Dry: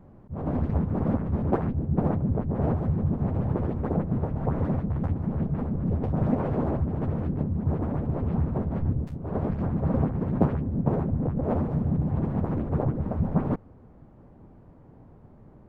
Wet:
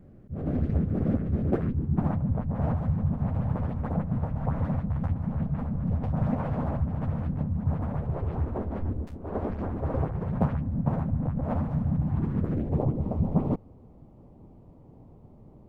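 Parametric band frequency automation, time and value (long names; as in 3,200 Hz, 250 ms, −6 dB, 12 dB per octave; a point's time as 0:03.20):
parametric band −14.5 dB 0.68 octaves
0:01.55 950 Hz
0:02.18 370 Hz
0:07.84 370 Hz
0:08.63 140 Hz
0:09.64 140 Hz
0:10.54 390 Hz
0:12.02 390 Hz
0:12.83 1,600 Hz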